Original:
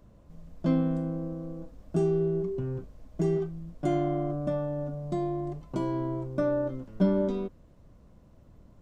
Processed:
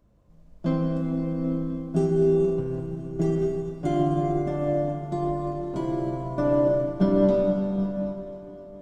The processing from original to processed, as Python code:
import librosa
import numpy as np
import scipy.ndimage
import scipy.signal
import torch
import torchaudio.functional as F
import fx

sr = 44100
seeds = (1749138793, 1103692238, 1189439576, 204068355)

y = fx.echo_heads(x, sr, ms=260, heads='first and third', feedback_pct=75, wet_db=-19.0)
y = fx.rev_plate(y, sr, seeds[0], rt60_s=4.9, hf_ratio=0.8, predelay_ms=0, drr_db=-0.5)
y = fx.upward_expand(y, sr, threshold_db=-40.0, expansion=1.5)
y = F.gain(torch.from_numpy(y), 3.0).numpy()